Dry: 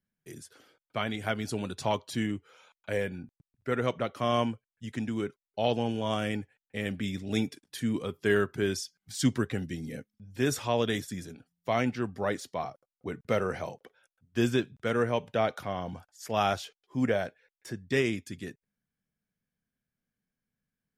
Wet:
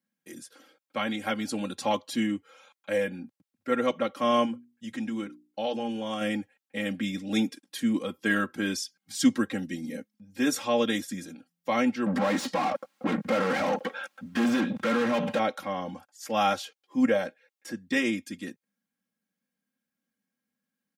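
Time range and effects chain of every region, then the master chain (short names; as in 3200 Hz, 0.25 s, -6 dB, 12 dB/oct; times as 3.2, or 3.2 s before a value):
4.45–6.21 notches 60/120/180/240/300/360 Hz + compressor 1.5:1, threshold -36 dBFS
12.06–15.39 resonant low shelf 280 Hz +6.5 dB, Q 1.5 + compressor 2:1, threshold -38 dBFS + overdrive pedal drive 38 dB, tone 1500 Hz, clips at -20.5 dBFS
whole clip: HPF 130 Hz 24 dB/oct; comb 3.7 ms, depth 94%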